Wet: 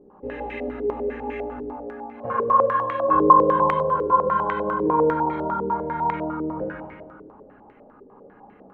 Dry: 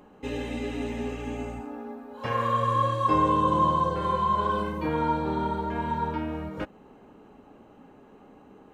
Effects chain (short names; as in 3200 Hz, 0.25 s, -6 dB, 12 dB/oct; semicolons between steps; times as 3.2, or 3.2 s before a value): 1.32–1.88 CVSD 64 kbps; Schroeder reverb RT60 1.8 s, combs from 32 ms, DRR -2.5 dB; stepped low-pass 10 Hz 420–2100 Hz; gain -4.5 dB